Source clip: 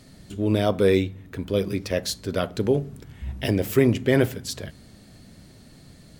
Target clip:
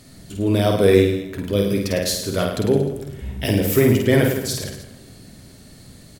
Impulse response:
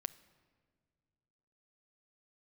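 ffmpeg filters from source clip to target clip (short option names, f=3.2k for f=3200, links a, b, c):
-filter_complex "[0:a]aecho=1:1:50|105|165.5|232|305.3:0.631|0.398|0.251|0.158|0.1,asplit=2[a][b];[1:a]atrim=start_sample=2205,asetrate=30429,aresample=44100,highshelf=f=6.7k:g=10.5[c];[b][c]afir=irnorm=-1:irlink=0,volume=4.5dB[d];[a][d]amix=inputs=2:normalize=0,volume=-6.5dB"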